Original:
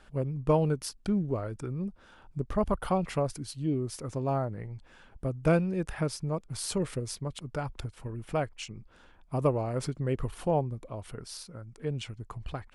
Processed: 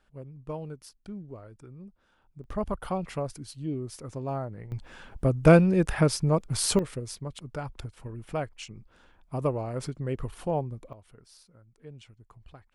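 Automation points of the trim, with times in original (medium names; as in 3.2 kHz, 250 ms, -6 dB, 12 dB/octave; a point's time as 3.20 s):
-12 dB
from 2.44 s -3 dB
from 4.72 s +8 dB
from 6.79 s -1.5 dB
from 10.93 s -13 dB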